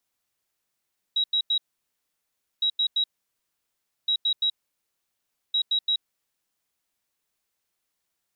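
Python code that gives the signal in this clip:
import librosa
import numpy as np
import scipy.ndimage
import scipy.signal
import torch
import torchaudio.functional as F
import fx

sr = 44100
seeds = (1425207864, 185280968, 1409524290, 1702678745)

y = fx.beep_pattern(sr, wave='sine', hz=3850.0, on_s=0.08, off_s=0.09, beeps=3, pause_s=1.04, groups=4, level_db=-20.0)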